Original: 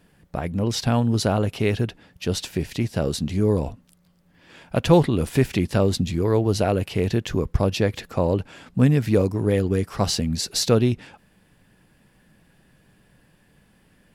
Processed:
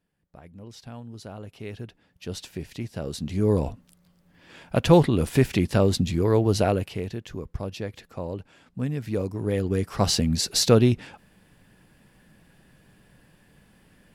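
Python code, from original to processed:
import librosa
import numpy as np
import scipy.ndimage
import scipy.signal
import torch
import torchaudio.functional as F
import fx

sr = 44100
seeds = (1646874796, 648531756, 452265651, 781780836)

y = fx.gain(x, sr, db=fx.line((1.16, -20.0), (2.37, -9.0), (3.03, -9.0), (3.54, -0.5), (6.68, -0.5), (7.14, -11.5), (8.86, -11.5), (10.14, 1.0)))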